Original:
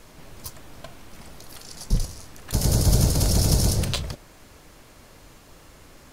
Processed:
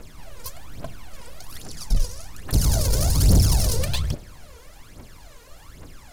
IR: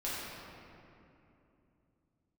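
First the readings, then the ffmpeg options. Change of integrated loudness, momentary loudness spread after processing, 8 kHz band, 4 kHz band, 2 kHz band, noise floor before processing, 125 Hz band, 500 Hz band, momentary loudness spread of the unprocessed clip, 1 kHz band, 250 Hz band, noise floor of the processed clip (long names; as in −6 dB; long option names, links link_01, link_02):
+0.5 dB, 22 LU, −0.5 dB, −0.5 dB, +0.5 dB, −50 dBFS, +1.0 dB, −0.5 dB, 20 LU, 0.0 dB, −1.0 dB, −46 dBFS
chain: -filter_complex "[0:a]volume=19dB,asoftclip=hard,volume=-19dB,aphaser=in_gain=1:out_gain=1:delay=2.2:decay=0.71:speed=1.2:type=triangular,asplit=2[link_01][link_02];[1:a]atrim=start_sample=2205,asetrate=79380,aresample=44100[link_03];[link_02][link_03]afir=irnorm=-1:irlink=0,volume=-22.5dB[link_04];[link_01][link_04]amix=inputs=2:normalize=0,volume=-1.5dB"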